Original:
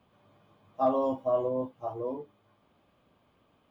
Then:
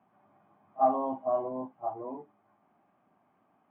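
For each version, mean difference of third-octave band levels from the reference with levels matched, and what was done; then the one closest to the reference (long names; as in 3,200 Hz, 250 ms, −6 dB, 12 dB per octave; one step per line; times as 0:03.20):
3.0 dB: loudspeaker in its box 180–2,100 Hz, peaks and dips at 200 Hz +3 dB, 500 Hz −10 dB, 760 Hz +9 dB
echo ahead of the sound 36 ms −21 dB
level −2 dB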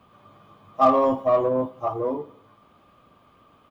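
2.0 dB: parametric band 1,200 Hz +12 dB 0.2 octaves
in parallel at −6.5 dB: soft clipping −27 dBFS, distortion −9 dB
on the sum: repeating echo 83 ms, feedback 53%, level −20 dB
level +5 dB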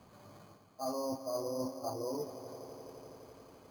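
10.5 dB: reversed playback
downward compressor 6 to 1, threshold −44 dBFS, peak gain reduction 21 dB
reversed playback
echo that builds up and dies away 85 ms, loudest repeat 5, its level −16.5 dB
bad sample-rate conversion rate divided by 8×, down filtered, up hold
level +7.5 dB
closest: second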